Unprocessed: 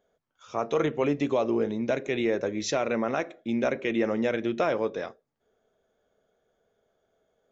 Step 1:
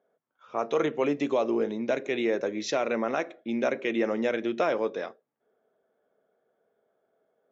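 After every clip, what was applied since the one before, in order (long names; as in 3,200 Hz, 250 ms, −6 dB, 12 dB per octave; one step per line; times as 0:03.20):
high-pass filter 210 Hz 12 dB per octave
low-pass that shuts in the quiet parts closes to 1,800 Hz, open at −22.5 dBFS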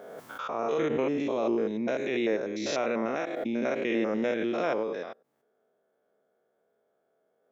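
spectrum averaged block by block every 100 ms
background raised ahead of every attack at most 27 dB per second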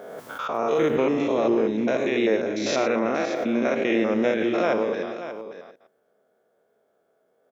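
delay that plays each chunk backwards 115 ms, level −11 dB
single-tap delay 582 ms −11.5 dB
level +5.5 dB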